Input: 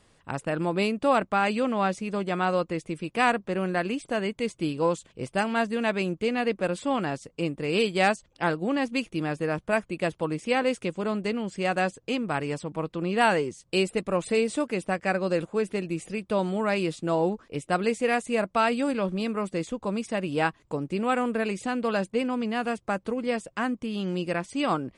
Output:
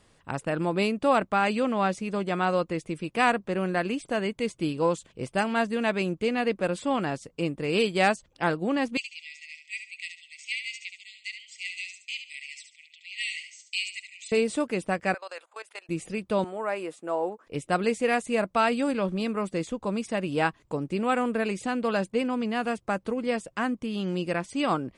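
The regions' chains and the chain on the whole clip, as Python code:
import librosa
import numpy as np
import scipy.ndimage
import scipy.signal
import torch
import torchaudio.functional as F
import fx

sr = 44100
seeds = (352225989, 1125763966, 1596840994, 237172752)

y = fx.chain(x, sr, fx.brickwall_bandpass(low_hz=1900.0, high_hz=8300.0),
    fx.echo_feedback(ms=71, feedback_pct=30, wet_db=-8.0), at=(8.97, 14.32))
y = fx.chain(y, sr, fx.highpass(hz=720.0, slope=24),
    fx.notch(hz=5700.0, q=18.0),
    fx.level_steps(step_db=19), at=(15.14, 15.89))
y = fx.chain(y, sr, fx.highpass(hz=490.0, slope=12),
    fx.peak_eq(hz=4200.0, db=-14.5, octaves=1.6), at=(16.44, 17.47))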